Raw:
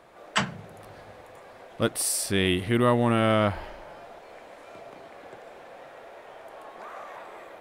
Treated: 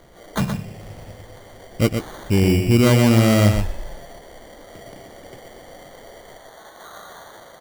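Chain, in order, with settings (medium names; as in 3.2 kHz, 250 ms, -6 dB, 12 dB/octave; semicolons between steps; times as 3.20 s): tilt EQ -4 dB/octave, from 6.37 s +1.5 dB/octave; sample-and-hold 17×; delay 122 ms -6.5 dB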